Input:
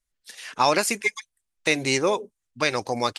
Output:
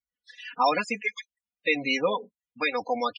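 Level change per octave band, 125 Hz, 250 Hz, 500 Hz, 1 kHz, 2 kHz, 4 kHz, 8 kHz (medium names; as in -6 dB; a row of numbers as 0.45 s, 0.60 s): -11.5 dB, -3.5 dB, -3.5 dB, -2.0 dB, -2.5 dB, -5.0 dB, -18.5 dB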